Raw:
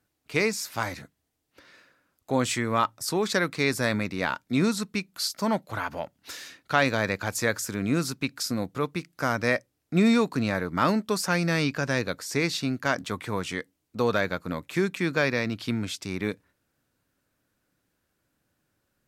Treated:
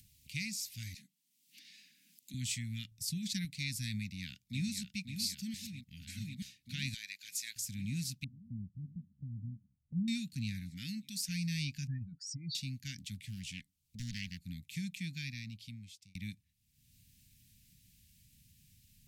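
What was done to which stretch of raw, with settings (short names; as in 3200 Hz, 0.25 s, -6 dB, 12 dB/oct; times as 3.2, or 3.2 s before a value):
0.94–2.34 steep high-pass 190 Hz
2.91–3.45 low shelf 240 Hz +7.5 dB
3.99–4.8 echo throw 0.54 s, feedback 80%, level -7.5 dB
5.54–6.42 reverse
6.94–7.56 HPF 1100 Hz
8.24–10.08 Gaussian blur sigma 24 samples
10.7–11.29 low shelf 150 Hz -10.5 dB
11.87–12.55 spectral contrast raised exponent 3.9
13.14–14.41 Doppler distortion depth 0.64 ms
15.01–16.15 fade out
whole clip: inverse Chebyshev band-stop 420–1200 Hz, stop band 50 dB; passive tone stack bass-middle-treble 6-0-2; upward compressor, threshold -55 dBFS; gain +8 dB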